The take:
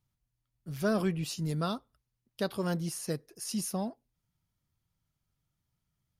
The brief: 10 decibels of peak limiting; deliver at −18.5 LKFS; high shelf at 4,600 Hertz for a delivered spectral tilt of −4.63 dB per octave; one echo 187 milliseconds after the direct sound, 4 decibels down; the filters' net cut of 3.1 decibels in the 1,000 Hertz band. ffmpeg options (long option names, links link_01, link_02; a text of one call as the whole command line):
ffmpeg -i in.wav -af "equalizer=frequency=1000:width_type=o:gain=-5,highshelf=frequency=4600:gain=6.5,alimiter=level_in=5dB:limit=-24dB:level=0:latency=1,volume=-5dB,aecho=1:1:187:0.631,volume=18dB" out.wav